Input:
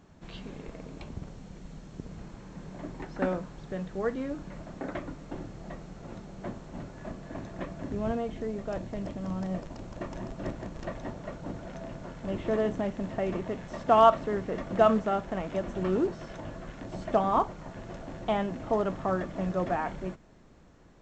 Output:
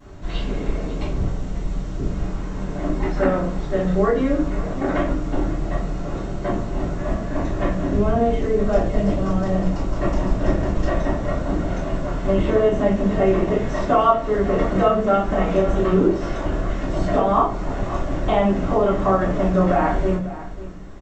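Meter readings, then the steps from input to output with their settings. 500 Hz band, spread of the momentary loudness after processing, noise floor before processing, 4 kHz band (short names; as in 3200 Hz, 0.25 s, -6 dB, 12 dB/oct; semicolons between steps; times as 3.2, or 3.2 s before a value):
+10.0 dB, 10 LU, -54 dBFS, +8.5 dB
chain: compressor 6:1, threshold -29 dBFS, peak gain reduction 14.5 dB; vibrato 0.36 Hz 8.4 cents; on a send: echo 0.546 s -16 dB; on the sum: shoebox room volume 38 m³, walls mixed, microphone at 2.7 m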